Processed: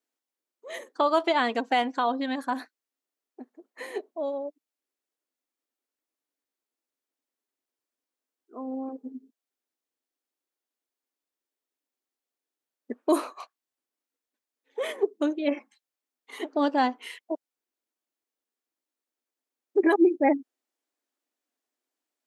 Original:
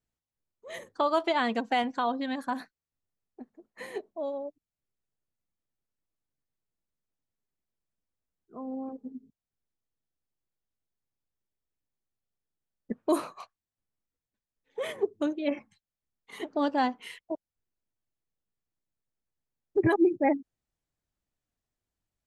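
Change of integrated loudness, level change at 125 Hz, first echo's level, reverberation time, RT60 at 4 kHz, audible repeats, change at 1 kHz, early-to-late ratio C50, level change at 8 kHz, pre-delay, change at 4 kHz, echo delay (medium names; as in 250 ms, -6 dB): +3.0 dB, under -15 dB, no echo, no reverb, no reverb, no echo, +3.0 dB, no reverb, +3.0 dB, no reverb, +3.0 dB, no echo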